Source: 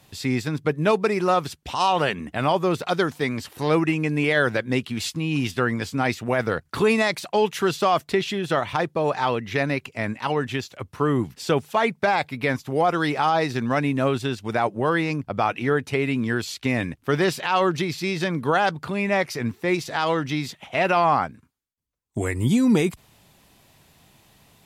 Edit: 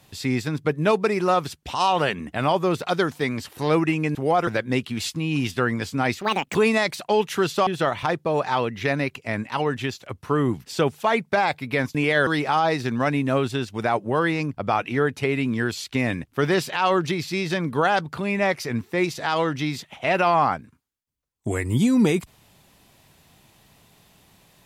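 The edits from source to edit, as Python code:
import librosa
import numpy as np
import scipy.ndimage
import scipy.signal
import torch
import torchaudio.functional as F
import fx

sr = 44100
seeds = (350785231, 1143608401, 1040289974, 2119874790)

y = fx.edit(x, sr, fx.swap(start_s=4.15, length_s=0.32, other_s=12.65, other_length_s=0.32),
    fx.speed_span(start_s=6.21, length_s=0.58, speed=1.72),
    fx.cut(start_s=7.91, length_s=0.46), tone=tone)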